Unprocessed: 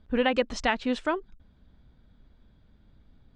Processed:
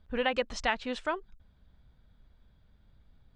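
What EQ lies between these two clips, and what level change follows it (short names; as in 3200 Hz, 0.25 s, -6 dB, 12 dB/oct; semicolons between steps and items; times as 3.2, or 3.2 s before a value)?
bell 280 Hz -7.5 dB 1.2 oct; -2.5 dB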